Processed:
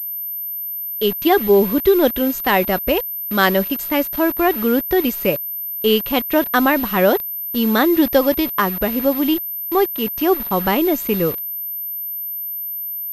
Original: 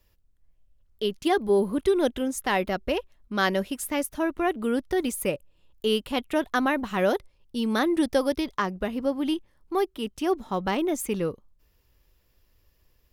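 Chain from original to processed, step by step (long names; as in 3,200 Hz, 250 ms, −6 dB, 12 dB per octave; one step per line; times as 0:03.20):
bit reduction 7 bits
switching amplifier with a slow clock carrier 13,000 Hz
level +8.5 dB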